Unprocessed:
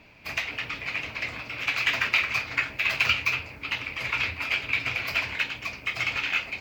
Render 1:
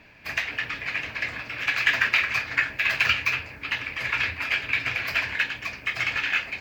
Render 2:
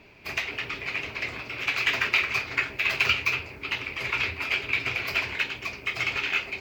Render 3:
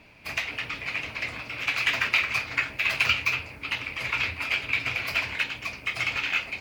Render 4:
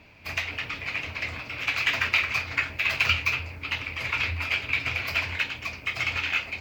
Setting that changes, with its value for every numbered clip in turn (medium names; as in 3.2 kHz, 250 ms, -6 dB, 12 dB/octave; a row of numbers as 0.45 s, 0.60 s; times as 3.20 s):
peaking EQ, frequency: 1.7 kHz, 390 Hz, 9.5 kHz, 85 Hz